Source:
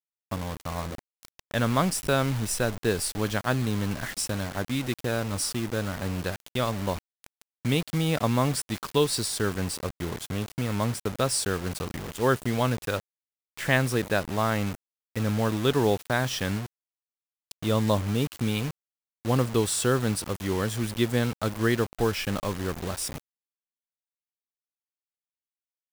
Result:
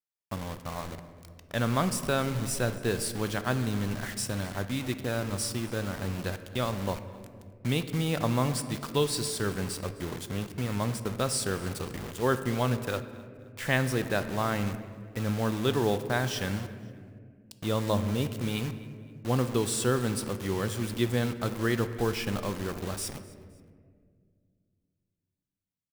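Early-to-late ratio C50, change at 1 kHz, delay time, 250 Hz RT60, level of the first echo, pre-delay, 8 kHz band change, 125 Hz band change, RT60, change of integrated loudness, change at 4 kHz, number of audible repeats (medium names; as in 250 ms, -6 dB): 11.5 dB, -3.0 dB, 260 ms, 2.9 s, -21.5 dB, 5 ms, -3.5 dB, -2.5 dB, 2.0 s, -3.0 dB, -3.0 dB, 2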